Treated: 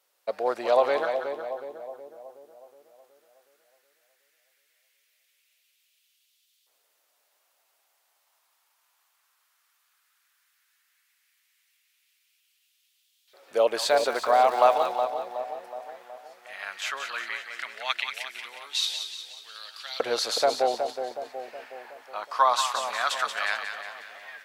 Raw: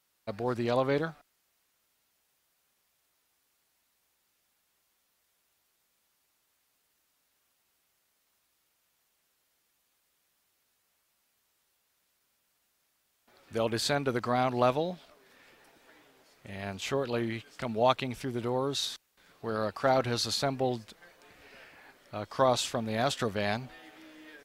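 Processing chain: LFO high-pass saw up 0.15 Hz 500–3500 Hz; 13.79–14.86 s: crackle 300 per s -37 dBFS; two-band feedback delay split 850 Hz, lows 369 ms, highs 181 ms, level -7 dB; trim +2.5 dB

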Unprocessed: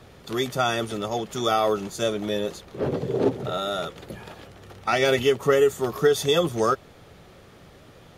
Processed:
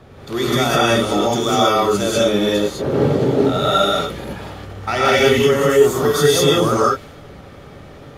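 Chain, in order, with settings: in parallel at -2 dB: compressor with a negative ratio -26 dBFS, ratio -1; on the sum: gated-style reverb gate 230 ms rising, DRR -6 dB; tape noise reduction on one side only decoder only; trim -2 dB

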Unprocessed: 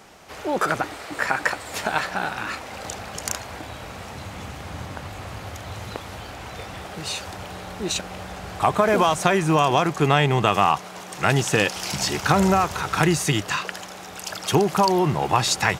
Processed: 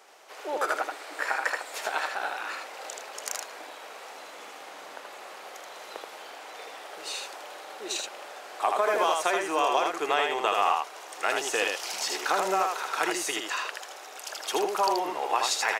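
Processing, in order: high-pass 390 Hz 24 dB/octave; on a send: delay 79 ms -3.5 dB; on the sum: trim -6.5 dB

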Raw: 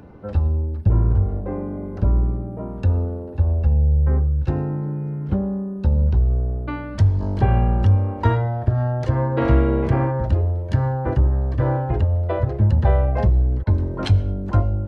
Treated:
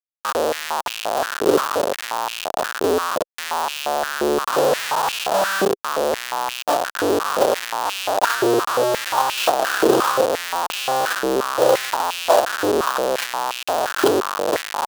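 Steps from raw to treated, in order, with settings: Schmitt trigger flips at -25.5 dBFS; peaking EQ 2.1 kHz -11.5 dB 0.48 oct; step-sequenced high-pass 5.7 Hz 400–2600 Hz; trim +4 dB

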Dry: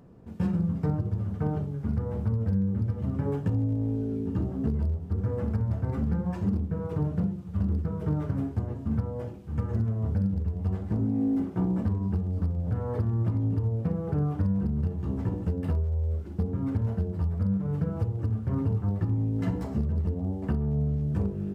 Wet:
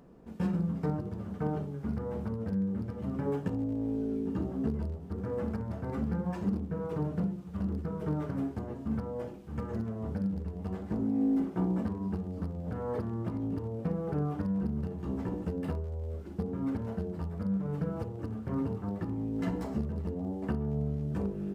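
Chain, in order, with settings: peaking EQ 99 Hz -14.5 dB 0.9 oct

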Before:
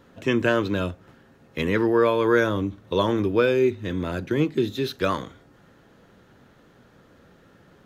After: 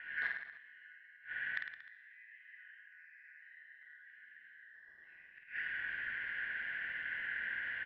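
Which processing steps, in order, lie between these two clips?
four frequency bands reordered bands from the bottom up 4123; low-pass 2.1 kHz 24 dB/octave; peak limiter -21 dBFS, peak gain reduction 11 dB; ring modulator 78 Hz; compression 5:1, threshold -44 dBFS, peak gain reduction 15 dB; gated-style reverb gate 420 ms flat, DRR -6.5 dB; inverted gate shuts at -33 dBFS, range -30 dB; on a send: reverse bouncing-ball echo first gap 50 ms, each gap 1.1×, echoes 5; on the sum: attacks held to a fixed rise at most 210 dB/s; trim +9 dB

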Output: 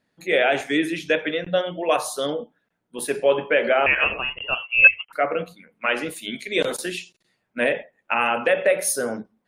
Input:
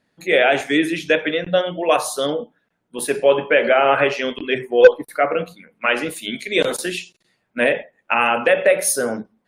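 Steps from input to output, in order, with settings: 3.86–5.13 s: frequency inversion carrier 3.1 kHz; trim -4 dB

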